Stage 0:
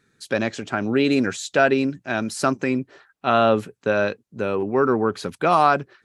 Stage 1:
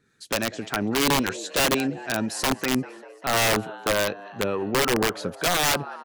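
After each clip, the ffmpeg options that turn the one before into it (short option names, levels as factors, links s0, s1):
-filter_complex "[0:a]asplit=7[s0][s1][s2][s3][s4][s5][s6];[s1]adelay=196,afreqshift=91,volume=0.112[s7];[s2]adelay=392,afreqshift=182,volume=0.0716[s8];[s3]adelay=588,afreqshift=273,volume=0.0457[s9];[s4]adelay=784,afreqshift=364,volume=0.0295[s10];[s5]adelay=980,afreqshift=455,volume=0.0188[s11];[s6]adelay=1176,afreqshift=546,volume=0.012[s12];[s0][s7][s8][s9][s10][s11][s12]amix=inputs=7:normalize=0,acrossover=split=670[s13][s14];[s13]aeval=exprs='val(0)*(1-0.5/2+0.5/2*cos(2*PI*3.6*n/s))':c=same[s15];[s14]aeval=exprs='val(0)*(1-0.5/2-0.5/2*cos(2*PI*3.6*n/s))':c=same[s16];[s15][s16]amix=inputs=2:normalize=0,aeval=exprs='(mod(5.62*val(0)+1,2)-1)/5.62':c=same"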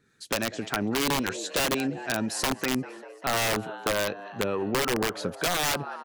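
-af "acompressor=threshold=0.0708:ratio=6"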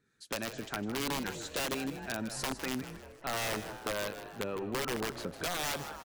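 -filter_complex "[0:a]asplit=5[s0][s1][s2][s3][s4];[s1]adelay=156,afreqshift=-88,volume=0.266[s5];[s2]adelay=312,afreqshift=-176,volume=0.106[s6];[s3]adelay=468,afreqshift=-264,volume=0.0427[s7];[s4]adelay=624,afreqshift=-352,volume=0.017[s8];[s0][s5][s6][s7][s8]amix=inputs=5:normalize=0,volume=0.376"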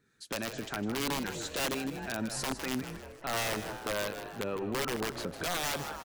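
-af "alimiter=level_in=1.68:limit=0.0631:level=0:latency=1:release=84,volume=0.596,volume=1.5"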